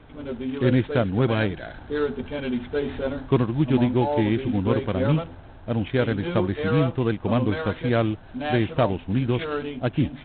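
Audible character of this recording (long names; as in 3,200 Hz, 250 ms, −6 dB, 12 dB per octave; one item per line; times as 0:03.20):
a buzz of ramps at a fixed pitch in blocks of 8 samples
A-law companding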